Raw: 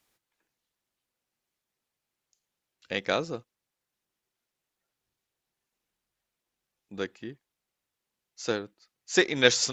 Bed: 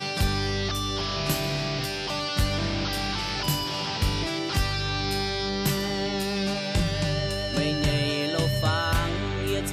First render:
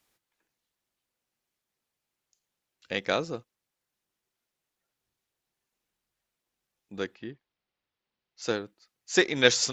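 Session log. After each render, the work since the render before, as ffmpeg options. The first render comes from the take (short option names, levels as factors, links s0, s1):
-filter_complex "[0:a]asettb=1/sr,asplit=3[s0][s1][s2];[s0]atrim=end=7.154[s3];[s1]atrim=start=7.15:end=8.42,asetpts=PTS-STARTPTS,afade=t=in:d=0.004:c=qsin,afade=t=out:st=1.266:d=0.004:c=qsin,lowpass=f=4800:w=0.5412,lowpass=f=4800:w=1.3066[s4];[s2]atrim=start=8.416[s5];[s3][s4]acrossfade=d=0.004:c1=hsin:c2=qsin[s6];[s6][s5]acrossfade=d=0.004:c1=qsin:c2=hsin"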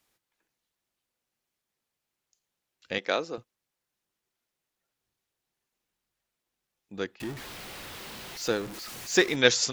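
-filter_complex "[0:a]asettb=1/sr,asplit=3[s0][s1][s2];[s0]atrim=end=2.984[s3];[s1]atrim=start=2.98:end=3.38,asetpts=PTS-STARTPTS,afade=t=in:d=0.004:c=qsin,afade=t=out:st=0.396:d=0.004:c=qsin,highpass=290,lowpass=7300[s4];[s2]atrim=start=3.376[s5];[s3][s4]acrossfade=d=0.004:c1=hsin:c2=qsin[s6];[s6][s5]acrossfade=d=0.004:c1=qsin:c2=hsin,asettb=1/sr,asplit=3[s7][s8][s9];[s7]atrim=end=7.204[s10];[s8]atrim=start=7.2:end=9.36,asetpts=PTS-STARTPTS,afade=t=in:d=0.004:c=qsin,afade=t=out:st=2.156:d=0.004:c=qsin,aeval=exprs='val(0)+0.5*0.0178*sgn(val(0))':c=same[s11];[s9]atrim=start=9.356[s12];[s10][s11]acrossfade=d=0.004:c1=hsin:c2=qsin[s13];[s13][s12]acrossfade=d=0.004:c1=qsin:c2=hsin"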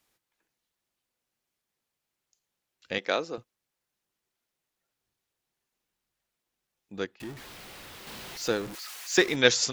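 -filter_complex "[0:a]asettb=1/sr,asplit=3[s0][s1][s2];[s0]atrim=end=8.754[s3];[s1]atrim=start=8.75:end=9.18,asetpts=PTS-STARTPTS,afade=t=in:d=0.004:c=qsin,afade=t=out:st=0.426:d=0.004:c=qsin,highpass=990[s4];[s2]atrim=start=9.176[s5];[s3][s4]acrossfade=d=0.004:c1=hsin:c2=qsin[s6];[s6][s5]acrossfade=d=0.004:c1=qsin:c2=hsin,asplit=3[s7][s8][s9];[s7]atrim=end=7.052[s10];[s8]atrim=start=7.048:end=8.072,asetpts=PTS-STARTPTS,volume=0.631[s11];[s9]atrim=start=8.068[s12];[s10][s11]acrossfade=d=0.004:c1=hsin:c2=hsin[s13];[s13][s12]acrossfade=d=0.004:c1=hsin:c2=hsin"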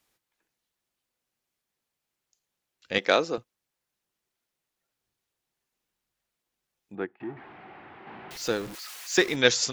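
-filter_complex "[0:a]asplit=3[s0][s1][s2];[s0]afade=t=out:st=2.94:d=0.02[s3];[s1]acontrast=55,afade=t=in:st=2.94:d=0.02,afade=t=out:st=3.37:d=0.02[s4];[s2]afade=t=in:st=3.37:d=0.02[s5];[s3][s4][s5]amix=inputs=3:normalize=0,asettb=1/sr,asplit=3[s6][s7][s8];[s6]atrim=end=6.954[s9];[s7]atrim=start=6.95:end=8.31,asetpts=PTS-STARTPTS,afade=t=in:d=0.004:c=qsin,afade=t=out:st=1.356:d=0.004:c=qsin,highpass=120,equalizer=f=350:t=q:w=4:g=6,equalizer=f=520:t=q:w=4:g=-6,equalizer=f=780:t=q:w=4:g=9,lowpass=f=2200:w=0.5412,lowpass=f=2200:w=1.3066[s10];[s8]atrim=start=8.306[s11];[s9][s10]acrossfade=d=0.004:c1=hsin:c2=qsin[s12];[s12][s11]acrossfade=d=0.004:c1=qsin:c2=hsin"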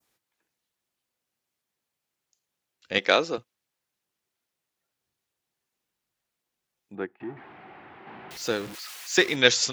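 -af "highpass=57,adynamicequalizer=threshold=0.0158:dfrequency=2900:dqfactor=0.76:tfrequency=2900:tqfactor=0.76:attack=5:release=100:ratio=0.375:range=2:mode=boostabove:tftype=bell"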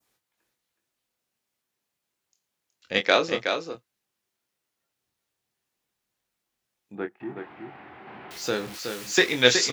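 -filter_complex "[0:a]asplit=2[s0][s1];[s1]adelay=24,volume=0.447[s2];[s0][s2]amix=inputs=2:normalize=0,asplit=2[s3][s4];[s4]aecho=0:1:370:0.473[s5];[s3][s5]amix=inputs=2:normalize=0"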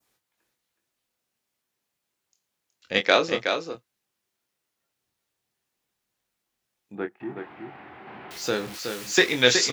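-af "volume=1.12,alimiter=limit=0.708:level=0:latency=1"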